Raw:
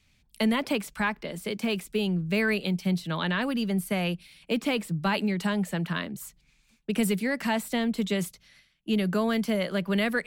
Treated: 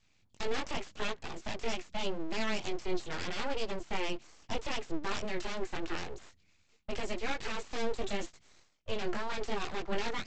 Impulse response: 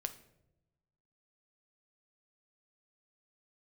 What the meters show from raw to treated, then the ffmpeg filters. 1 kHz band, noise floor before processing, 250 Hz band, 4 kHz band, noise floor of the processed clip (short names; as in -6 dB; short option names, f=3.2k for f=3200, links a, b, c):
-5.0 dB, -66 dBFS, -15.0 dB, -6.0 dB, -69 dBFS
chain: -af "alimiter=limit=-20.5dB:level=0:latency=1:release=12,flanger=delay=18:depth=4.3:speed=0.83,aresample=16000,aeval=exprs='abs(val(0))':c=same,aresample=44100"